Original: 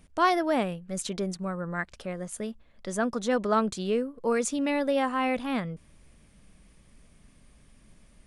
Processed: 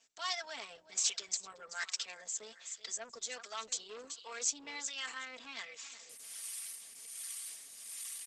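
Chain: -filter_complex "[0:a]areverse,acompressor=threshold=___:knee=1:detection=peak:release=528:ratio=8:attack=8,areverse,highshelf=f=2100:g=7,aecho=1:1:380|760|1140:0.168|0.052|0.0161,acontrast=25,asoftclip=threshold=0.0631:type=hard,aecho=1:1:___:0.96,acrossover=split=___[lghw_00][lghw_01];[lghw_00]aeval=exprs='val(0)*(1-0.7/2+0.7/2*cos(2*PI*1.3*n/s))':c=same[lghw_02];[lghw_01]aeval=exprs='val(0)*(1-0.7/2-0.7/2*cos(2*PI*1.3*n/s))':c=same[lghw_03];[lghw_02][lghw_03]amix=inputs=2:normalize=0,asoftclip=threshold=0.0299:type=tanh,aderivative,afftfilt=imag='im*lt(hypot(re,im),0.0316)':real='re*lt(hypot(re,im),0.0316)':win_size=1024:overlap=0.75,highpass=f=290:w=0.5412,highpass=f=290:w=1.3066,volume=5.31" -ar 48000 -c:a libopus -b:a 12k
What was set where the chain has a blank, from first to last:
0.0112, 4.4, 730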